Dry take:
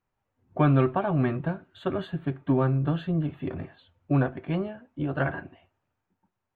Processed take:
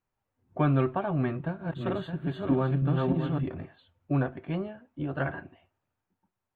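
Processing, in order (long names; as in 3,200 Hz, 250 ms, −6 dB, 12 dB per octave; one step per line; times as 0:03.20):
0:01.28–0:03.46: feedback delay that plays each chunk backwards 308 ms, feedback 42%, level −1 dB
level −3.5 dB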